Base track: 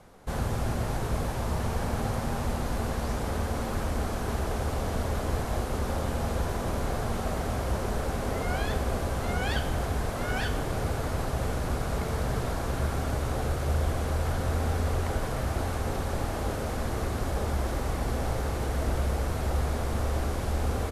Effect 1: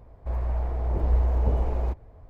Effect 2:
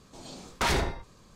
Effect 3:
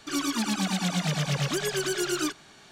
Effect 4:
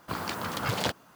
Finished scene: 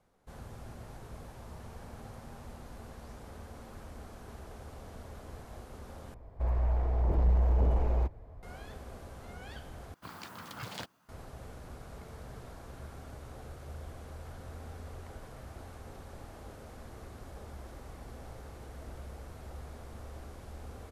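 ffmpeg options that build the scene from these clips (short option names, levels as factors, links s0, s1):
-filter_complex "[0:a]volume=0.133[s0];[1:a]asoftclip=type=tanh:threshold=0.133[s1];[4:a]equalizer=f=470:t=o:w=1.2:g=-4[s2];[s0]asplit=3[s3][s4][s5];[s3]atrim=end=6.144[s6];[s1]atrim=end=2.29,asetpts=PTS-STARTPTS,volume=0.891[s7];[s4]atrim=start=8.426:end=9.944[s8];[s2]atrim=end=1.15,asetpts=PTS-STARTPTS,volume=0.251[s9];[s5]atrim=start=11.086[s10];[s6][s7]acrossfade=d=0.004:c1=hsin:c2=hsin[s11];[s11][s8]acrossfade=d=0.004:c1=hsin:c2=hsin[s12];[s12][s9]acrossfade=d=0.004:c1=hsin:c2=hsin[s13];[s13][s10]acrossfade=d=0.004:c1=hsin:c2=hsin"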